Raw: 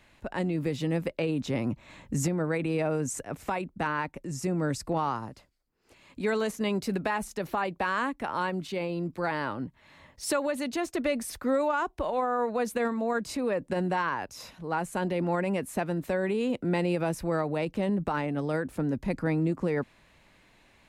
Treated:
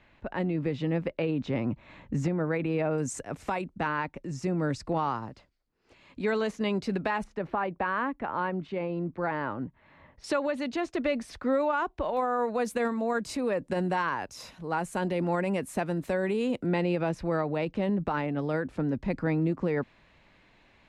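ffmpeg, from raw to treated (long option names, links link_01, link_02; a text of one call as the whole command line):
ffmpeg -i in.wav -af "asetnsamples=nb_out_samples=441:pad=0,asendcmd='2.98 lowpass f 8100;3.74 lowpass f 4900;7.24 lowpass f 2000;10.24 lowpass f 4400;12.17 lowpass f 11000;16.66 lowpass f 4500',lowpass=3100" out.wav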